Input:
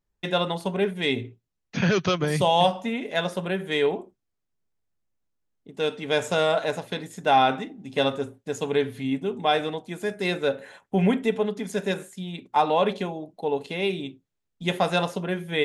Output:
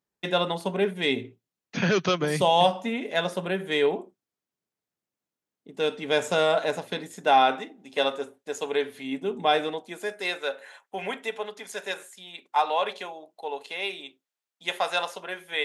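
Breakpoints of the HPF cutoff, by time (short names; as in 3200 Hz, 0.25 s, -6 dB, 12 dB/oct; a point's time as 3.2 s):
6.9 s 180 Hz
7.77 s 420 Hz
9.02 s 420 Hz
9.42 s 170 Hz
10.39 s 720 Hz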